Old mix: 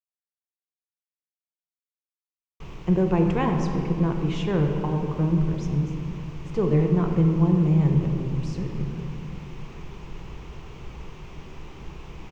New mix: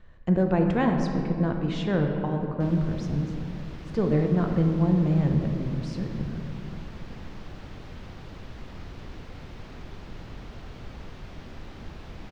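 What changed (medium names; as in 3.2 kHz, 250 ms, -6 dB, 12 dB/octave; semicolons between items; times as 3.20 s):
speech: entry -2.60 s; master: remove rippled EQ curve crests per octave 0.73, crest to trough 8 dB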